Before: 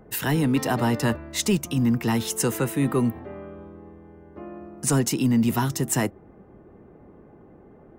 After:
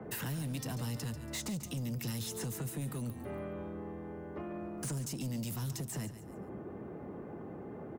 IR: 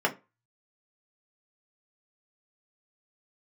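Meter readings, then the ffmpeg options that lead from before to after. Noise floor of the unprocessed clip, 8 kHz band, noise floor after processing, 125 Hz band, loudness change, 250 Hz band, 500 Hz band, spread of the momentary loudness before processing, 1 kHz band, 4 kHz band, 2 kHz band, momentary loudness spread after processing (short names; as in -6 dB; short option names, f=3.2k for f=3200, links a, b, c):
-51 dBFS, -13.5 dB, -47 dBFS, -11.0 dB, -16.0 dB, -16.5 dB, -14.5 dB, 18 LU, -17.5 dB, -12.5 dB, -16.0 dB, 8 LU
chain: -filter_complex "[0:a]highpass=91,acrossover=split=180|4700[a][b][c];[b]acompressor=threshold=-39dB:ratio=6[d];[c]alimiter=limit=-22.5dB:level=0:latency=1:release=24[e];[a][d][e]amix=inputs=3:normalize=0,acrossover=split=140|2000[f][g][h];[f]acompressor=threshold=-45dB:ratio=4[i];[g]acompressor=threshold=-43dB:ratio=4[j];[h]acompressor=threshold=-44dB:ratio=4[k];[i][j][k]amix=inputs=3:normalize=0,asoftclip=type=tanh:threshold=-38.5dB,aecho=1:1:141|282|423:0.251|0.0829|0.0274,adynamicequalizer=threshold=0.00112:dfrequency=7000:dqfactor=0.7:tfrequency=7000:tqfactor=0.7:attack=5:release=100:ratio=0.375:range=2.5:mode=cutabove:tftype=highshelf,volume=5.5dB"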